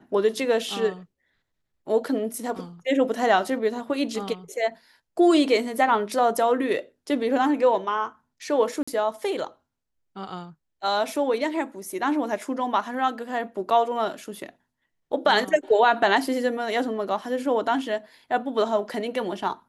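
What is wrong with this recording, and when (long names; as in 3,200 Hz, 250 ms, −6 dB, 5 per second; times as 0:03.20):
0:08.83–0:08.88: drop-out 45 ms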